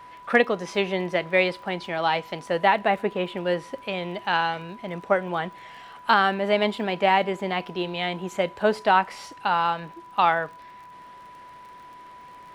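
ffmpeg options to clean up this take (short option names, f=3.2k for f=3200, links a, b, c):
-af "adeclick=t=4,bandreject=f=990:w=30"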